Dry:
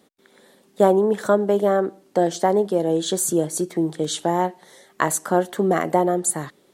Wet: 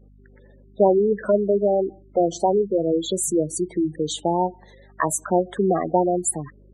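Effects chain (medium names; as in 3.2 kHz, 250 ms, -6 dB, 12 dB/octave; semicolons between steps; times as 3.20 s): spectral gate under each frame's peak -10 dB strong; hum 50 Hz, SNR 29 dB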